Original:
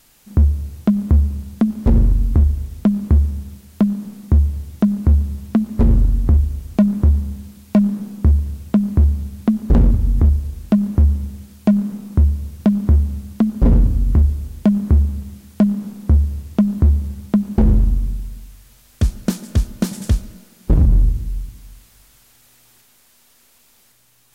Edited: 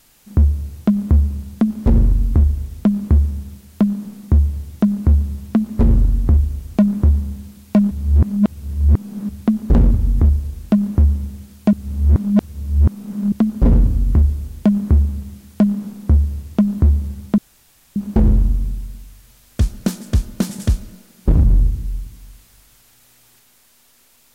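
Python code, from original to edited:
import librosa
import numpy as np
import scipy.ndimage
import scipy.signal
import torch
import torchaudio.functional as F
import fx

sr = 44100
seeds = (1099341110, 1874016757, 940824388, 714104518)

y = fx.edit(x, sr, fx.reverse_span(start_s=7.91, length_s=1.38),
    fx.reverse_span(start_s=11.73, length_s=1.59),
    fx.insert_room_tone(at_s=17.38, length_s=0.58), tone=tone)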